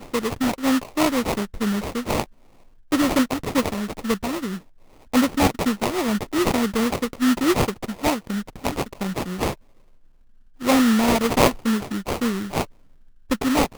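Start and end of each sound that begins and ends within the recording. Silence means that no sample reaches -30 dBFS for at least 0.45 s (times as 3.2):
2.92–4.58
5.13–9.53
10.62–12.64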